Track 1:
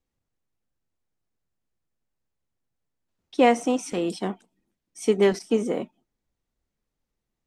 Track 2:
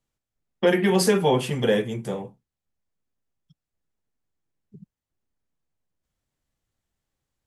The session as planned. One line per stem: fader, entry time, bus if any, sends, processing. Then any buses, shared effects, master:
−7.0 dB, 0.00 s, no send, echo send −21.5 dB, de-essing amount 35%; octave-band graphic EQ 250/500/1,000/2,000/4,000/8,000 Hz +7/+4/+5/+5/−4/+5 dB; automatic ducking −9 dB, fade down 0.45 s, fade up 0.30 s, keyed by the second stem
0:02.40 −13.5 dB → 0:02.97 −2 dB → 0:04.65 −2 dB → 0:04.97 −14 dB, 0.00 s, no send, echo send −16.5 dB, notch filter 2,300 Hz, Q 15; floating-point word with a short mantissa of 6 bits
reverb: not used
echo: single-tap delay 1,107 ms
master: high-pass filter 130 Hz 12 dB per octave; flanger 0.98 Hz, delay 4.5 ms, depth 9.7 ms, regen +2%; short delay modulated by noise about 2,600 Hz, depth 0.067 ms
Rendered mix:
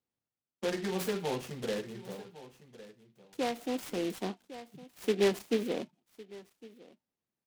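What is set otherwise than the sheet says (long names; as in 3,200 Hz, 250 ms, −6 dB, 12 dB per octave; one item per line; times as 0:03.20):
stem 1: missing octave-band graphic EQ 250/500/1,000/2,000/4,000/8,000 Hz +7/+4/+5/+5/−4/+5 dB
master: missing flanger 0.98 Hz, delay 4.5 ms, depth 9.7 ms, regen +2%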